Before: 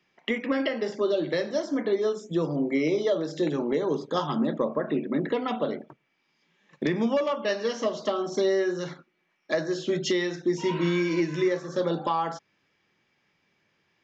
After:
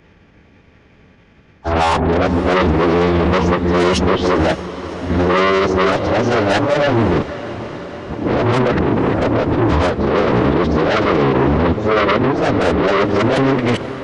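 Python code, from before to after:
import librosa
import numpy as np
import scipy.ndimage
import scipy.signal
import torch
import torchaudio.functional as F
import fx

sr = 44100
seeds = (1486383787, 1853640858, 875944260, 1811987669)

p1 = x[::-1].copy()
p2 = fx.tilt_eq(p1, sr, slope=-3.5)
p3 = fx.over_compress(p2, sr, threshold_db=-23.0, ratio=-0.5)
p4 = p2 + (p3 * librosa.db_to_amplitude(1.0))
p5 = fx.cheby_harmonics(p4, sr, harmonics=(5, 6), levels_db=(-12, -33), full_scale_db=-3.5)
p6 = 10.0 ** (-18.0 / 20.0) * np.tanh(p5 / 10.0 ** (-18.0 / 20.0))
p7 = fx.pitch_keep_formants(p6, sr, semitones=-12.0)
p8 = p7 + fx.echo_diffused(p7, sr, ms=552, feedback_pct=69, wet_db=-14.0, dry=0)
y = p8 * librosa.db_to_amplitude(6.0)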